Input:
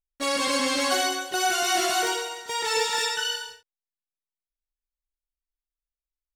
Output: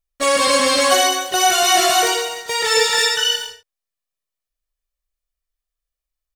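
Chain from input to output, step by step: comb 1.7 ms, depth 44%; in parallel at -10 dB: sample gate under -34.5 dBFS; on the sum: gain +6 dB

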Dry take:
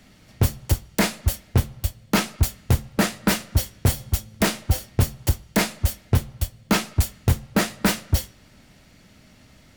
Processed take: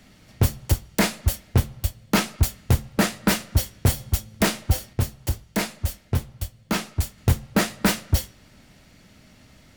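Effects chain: 4.93–7.18 flange 1.3 Hz, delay 6.9 ms, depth 8.1 ms, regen -67%

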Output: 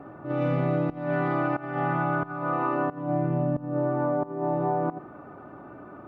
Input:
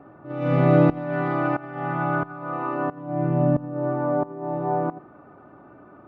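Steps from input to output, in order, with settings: compressor 12:1, threshold -26 dBFS, peak gain reduction 14.5 dB; gain +4 dB

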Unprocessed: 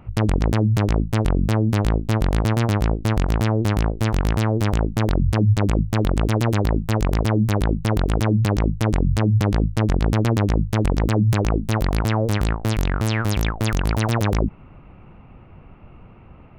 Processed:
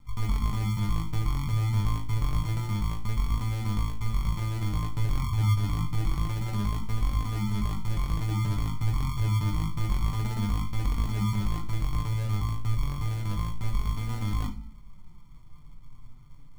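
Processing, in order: passive tone stack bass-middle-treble 10-0-1; de-hum 71.88 Hz, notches 5; sample-and-hold 40×; flange 0.28 Hz, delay 3.7 ms, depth 4.2 ms, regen +41%; on a send: reverb RT60 0.40 s, pre-delay 7 ms, DRR 5 dB; on the sum: gain +6 dB

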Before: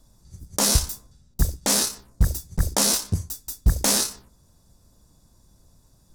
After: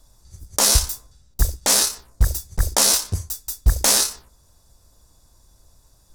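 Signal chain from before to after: bell 190 Hz -11.5 dB 1.7 oct; gain +4.5 dB

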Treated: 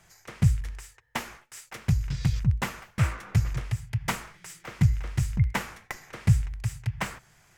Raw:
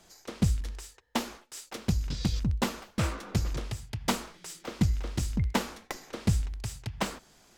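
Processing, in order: graphic EQ 125/250/500/2000/4000 Hz +12/-11/-4/+7/-7 dB

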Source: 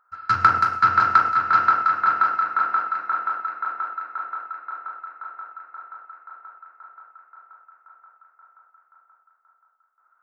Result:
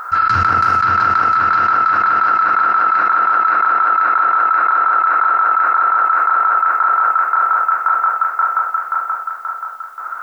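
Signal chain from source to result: fast leveller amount 100%; gain -2.5 dB

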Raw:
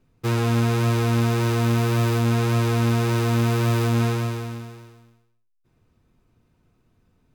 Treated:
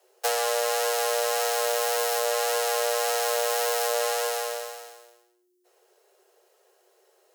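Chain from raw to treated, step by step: tone controls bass -6 dB, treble +13 dB; compressor, threshold -25 dBFS, peak gain reduction 6.5 dB; frequency shift +360 Hz; gain +3 dB

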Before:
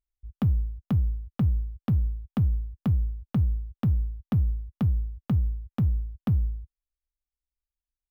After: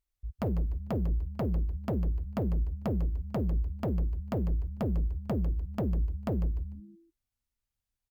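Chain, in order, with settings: added harmonics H 5 -6 dB, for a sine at -16 dBFS; frequency-shifting echo 0.149 s, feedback 32%, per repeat -130 Hz, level -11 dB; gain -7.5 dB

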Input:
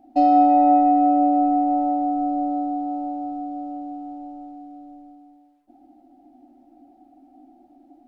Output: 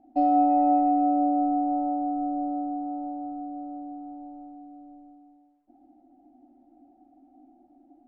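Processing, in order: LPF 1100 Hz 6 dB/oct; gain -4.5 dB

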